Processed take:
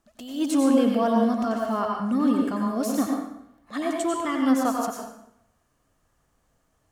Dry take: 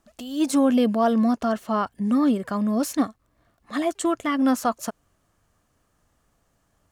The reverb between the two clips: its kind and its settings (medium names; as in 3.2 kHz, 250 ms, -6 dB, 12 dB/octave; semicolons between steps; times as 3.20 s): plate-style reverb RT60 0.77 s, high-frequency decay 0.8×, pre-delay 80 ms, DRR 0 dB; trim -4 dB